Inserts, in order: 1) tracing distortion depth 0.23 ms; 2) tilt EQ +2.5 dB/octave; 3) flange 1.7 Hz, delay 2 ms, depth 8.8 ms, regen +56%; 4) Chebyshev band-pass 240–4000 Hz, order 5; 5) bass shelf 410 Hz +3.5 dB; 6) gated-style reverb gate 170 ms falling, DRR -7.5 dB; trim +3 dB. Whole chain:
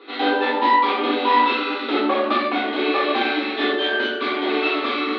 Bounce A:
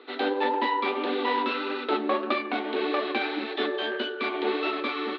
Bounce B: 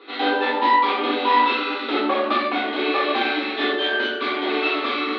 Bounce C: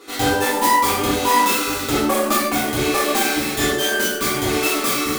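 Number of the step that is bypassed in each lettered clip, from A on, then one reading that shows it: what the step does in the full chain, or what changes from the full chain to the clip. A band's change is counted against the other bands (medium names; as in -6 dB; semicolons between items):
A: 6, momentary loudness spread change -1 LU; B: 5, 250 Hz band -2.0 dB; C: 4, momentary loudness spread change -1 LU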